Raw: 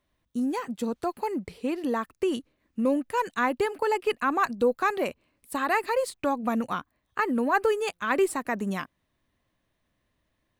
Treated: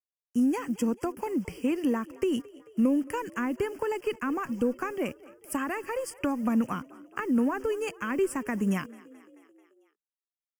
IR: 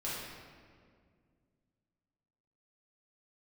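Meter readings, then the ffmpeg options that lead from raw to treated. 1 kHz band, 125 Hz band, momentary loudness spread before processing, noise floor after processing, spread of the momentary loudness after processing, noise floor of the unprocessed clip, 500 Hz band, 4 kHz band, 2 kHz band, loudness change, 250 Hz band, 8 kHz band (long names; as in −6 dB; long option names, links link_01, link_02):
−8.0 dB, +4.0 dB, 8 LU, below −85 dBFS, 8 LU, −77 dBFS, −4.0 dB, −5.5 dB, −6.5 dB, −2.0 dB, +2.5 dB, −1.0 dB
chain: -filter_complex "[0:a]equalizer=frequency=680:width_type=o:width=1.4:gain=-5.5,acrossover=split=340[link_01][link_02];[link_02]acompressor=threshold=-35dB:ratio=20[link_03];[link_01][link_03]amix=inputs=2:normalize=0,acrusher=bits=9:mix=0:aa=0.000001,asuperstop=centerf=3900:order=12:qfactor=2.6,asplit=6[link_04][link_05][link_06][link_07][link_08][link_09];[link_05]adelay=219,afreqshift=32,volume=-22dB[link_10];[link_06]adelay=438,afreqshift=64,volume=-26dB[link_11];[link_07]adelay=657,afreqshift=96,volume=-30dB[link_12];[link_08]adelay=876,afreqshift=128,volume=-34dB[link_13];[link_09]adelay=1095,afreqshift=160,volume=-38.1dB[link_14];[link_04][link_10][link_11][link_12][link_13][link_14]amix=inputs=6:normalize=0,volume=4.5dB"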